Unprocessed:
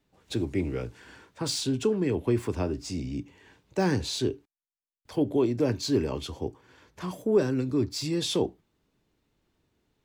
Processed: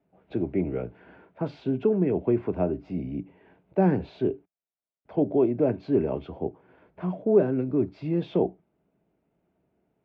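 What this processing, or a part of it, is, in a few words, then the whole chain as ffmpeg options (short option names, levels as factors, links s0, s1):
bass cabinet: -af "highpass=72,equalizer=f=100:t=q:w=4:g=-8,equalizer=f=180:t=q:w=4:g=7,equalizer=f=390:t=q:w=4:g=3,equalizer=f=660:t=q:w=4:g=10,equalizer=f=1100:t=q:w=4:g=-5,equalizer=f=1800:t=q:w=4:g=-7,lowpass=f=2200:w=0.5412,lowpass=f=2200:w=1.3066"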